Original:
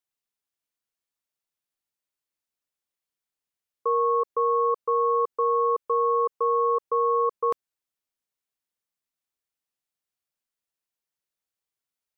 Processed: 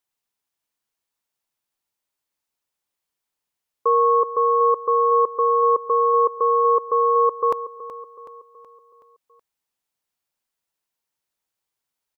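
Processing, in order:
parametric band 900 Hz +4.5 dB 0.43 octaves
on a send: repeating echo 374 ms, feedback 50%, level −14 dB
on the sum: level +5 dB

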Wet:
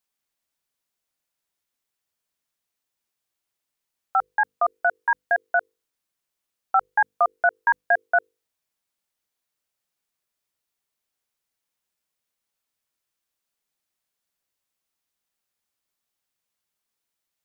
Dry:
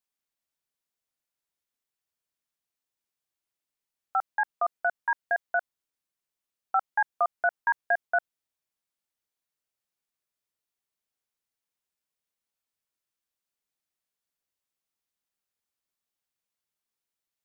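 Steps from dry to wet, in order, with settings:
mains-hum notches 50/100/150/200/250/300/350/400/450/500 Hz
level +5.5 dB

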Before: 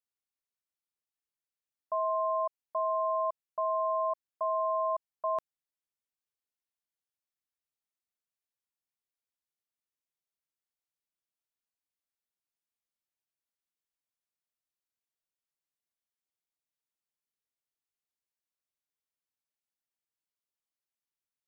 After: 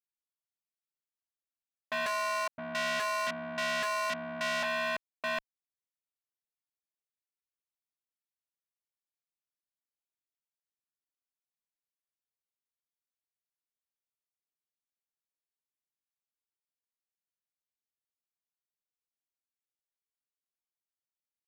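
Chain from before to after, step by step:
leveller curve on the samples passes 5
0:02.06–0:04.63: multiband delay without the direct sound highs, lows 520 ms, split 580 Hz
saturating transformer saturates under 3,100 Hz

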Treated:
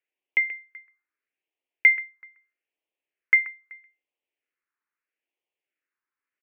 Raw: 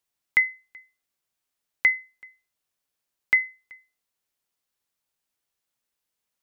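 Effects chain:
single-sideband voice off tune +55 Hz 260–2,700 Hz
on a send: single-tap delay 131 ms −15.5 dB
on the sum: all-pass phaser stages 4, 0.78 Hz, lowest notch 600–1,400 Hz
level +3 dB

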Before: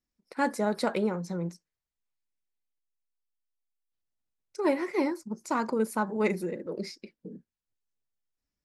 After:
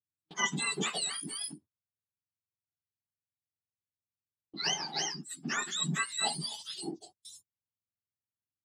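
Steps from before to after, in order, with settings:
frequency axis turned over on the octave scale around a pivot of 1,300 Hz
noise gate −55 dBFS, range −24 dB

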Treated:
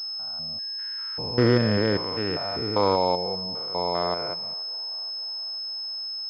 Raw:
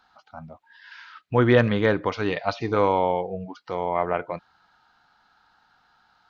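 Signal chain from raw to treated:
spectrum averaged block by block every 200 ms
high-pass filter 54 Hz
on a send: feedback echo with a band-pass in the loop 481 ms, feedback 65%, band-pass 900 Hz, level −22.5 dB
on the sum: switching amplifier with a slow clock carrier 5,200 Hz

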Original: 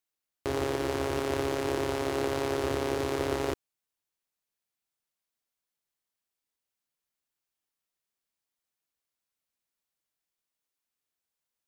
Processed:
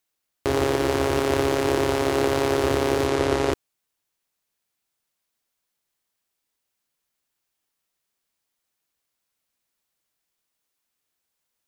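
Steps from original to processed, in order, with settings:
0:03.07–0:03.53: Bessel low-pass filter 10,000 Hz, order 8
level +8 dB

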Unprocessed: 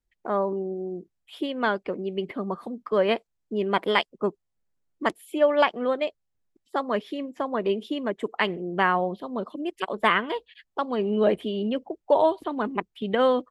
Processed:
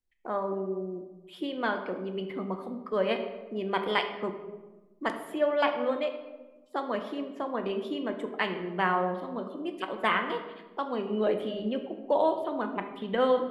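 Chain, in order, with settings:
mains-hum notches 50/100/150/200 Hz
on a send: convolution reverb RT60 1.2 s, pre-delay 4 ms, DRR 5 dB
on the sum: level −5.5 dB

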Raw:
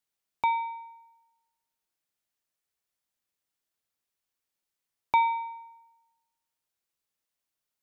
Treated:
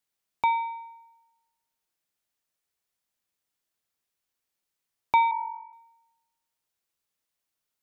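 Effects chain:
0:05.31–0:05.73: three sine waves on the formant tracks
hum removal 285.3 Hz, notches 5
level +2 dB

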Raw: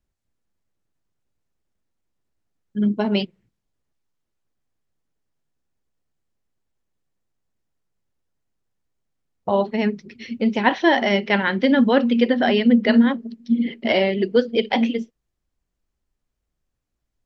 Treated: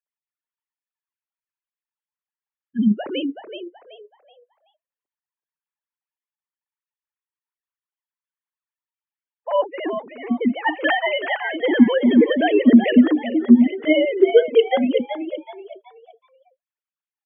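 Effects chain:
three sine waves on the formant tracks
gate on every frequency bin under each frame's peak −30 dB strong
echo with shifted repeats 378 ms, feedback 33%, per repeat +69 Hz, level −9 dB
level +1.5 dB

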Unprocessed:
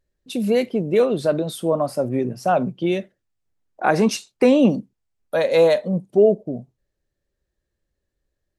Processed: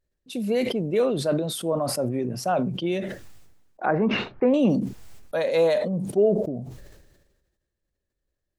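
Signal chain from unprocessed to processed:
0:03.86–0:04.54: low-pass filter 1,800 Hz 24 dB per octave
level that may fall only so fast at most 46 dB per second
level −5.5 dB

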